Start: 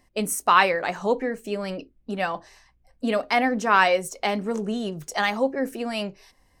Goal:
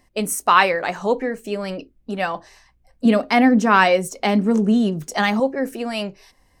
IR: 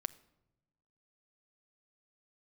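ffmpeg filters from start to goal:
-filter_complex "[0:a]asettb=1/sr,asplit=3[a][b][c];[a]atrim=end=3.054[d];[b]atrim=start=3.05:end=5.4,asetpts=PTS-STARTPTS,afade=t=in:d=0.004:c=qsin,afade=t=out:st=2.346:d=0.004:c=qsin,equalizer=f=230:t=o:w=1.1:g=9.5[e];[c]atrim=start=5.396[f];[d][e]acrossfade=d=0.004:c1=hsin:c2=qsin[g];[g][f]acrossfade=d=0.004:c1=qsin:c2=hsin,volume=3dB"

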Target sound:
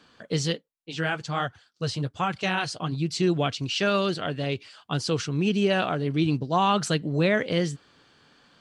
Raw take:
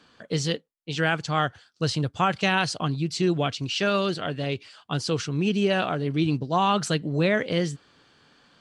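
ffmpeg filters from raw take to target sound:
-filter_complex "[0:a]asplit=3[a][b][c];[a]afade=t=out:st=0.51:d=0.02[d];[b]flanger=delay=0.8:depth=8:regen=-35:speed=1.3:shape=sinusoidal,afade=t=in:st=0.51:d=0.02,afade=t=out:st=2.91:d=0.02[e];[c]afade=t=in:st=2.91:d=0.02[f];[d][e][f]amix=inputs=3:normalize=0"

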